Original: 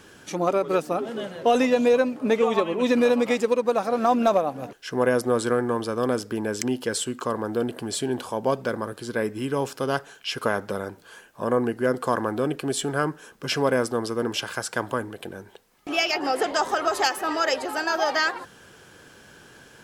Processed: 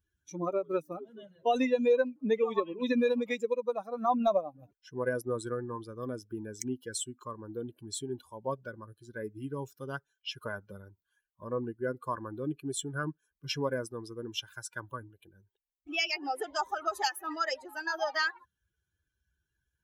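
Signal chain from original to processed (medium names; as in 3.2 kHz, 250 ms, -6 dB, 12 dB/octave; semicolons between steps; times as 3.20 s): expander on every frequency bin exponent 2; trim -3.5 dB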